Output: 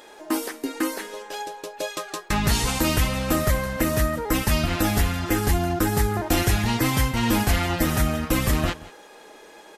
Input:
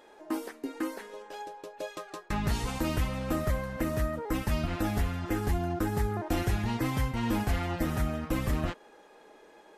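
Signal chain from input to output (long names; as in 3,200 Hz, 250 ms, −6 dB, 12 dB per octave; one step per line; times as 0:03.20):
high-shelf EQ 2,400 Hz +9.5 dB
on a send: single-tap delay 179 ms −19.5 dB
on the sum: level +7 dB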